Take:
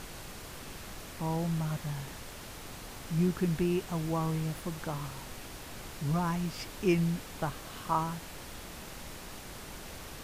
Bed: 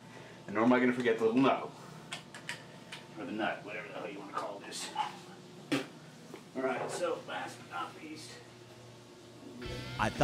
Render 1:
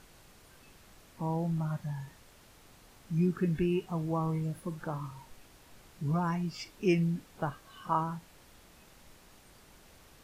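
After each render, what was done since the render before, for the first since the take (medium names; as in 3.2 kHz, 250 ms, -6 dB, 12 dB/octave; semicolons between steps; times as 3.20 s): noise print and reduce 13 dB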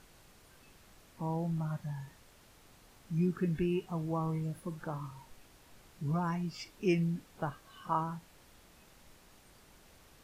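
trim -2.5 dB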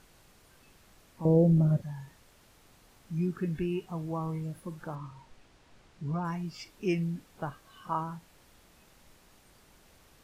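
1.25–1.82 s: resonant low shelf 690 Hz +11 dB, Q 3; 4.95–6.25 s: distance through air 63 m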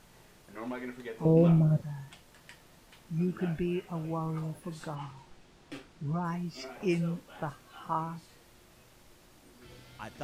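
add bed -12 dB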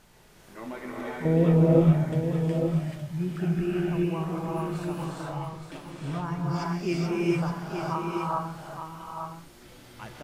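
on a send: delay 868 ms -7 dB; on the sum: gated-style reverb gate 460 ms rising, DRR -4 dB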